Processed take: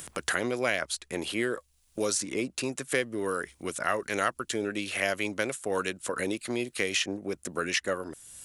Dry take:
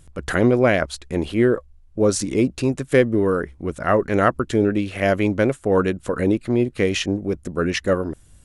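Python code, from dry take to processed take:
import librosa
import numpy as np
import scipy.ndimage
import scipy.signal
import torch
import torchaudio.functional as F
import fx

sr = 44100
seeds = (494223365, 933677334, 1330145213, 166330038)

y = fx.tilt_eq(x, sr, slope=4.0)
y = fx.band_squash(y, sr, depth_pct=70)
y = y * 10.0 ** (-8.0 / 20.0)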